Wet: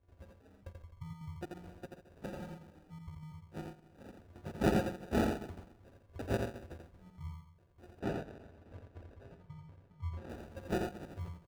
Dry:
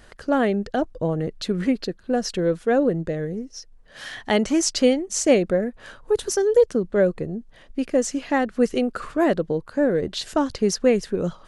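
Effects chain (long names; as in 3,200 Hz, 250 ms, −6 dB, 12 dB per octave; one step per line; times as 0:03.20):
linear-phase brick-wall band-stop 160–4,500 Hz
tuned comb filter 88 Hz, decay 0.22 s, harmonics odd, mix 100%
repeating echo 135 ms, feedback 41%, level −12 dB
decimation without filtering 41×
high-pass filter 45 Hz
high-shelf EQ 2,300 Hz −9.5 dB
gate pattern ".xxx.xxxx.x.xx" 186 BPM −12 dB
0:08.00–0:10.29: high-shelf EQ 6,400 Hz −12 dB
single-tap delay 85 ms −4 dB
level +8 dB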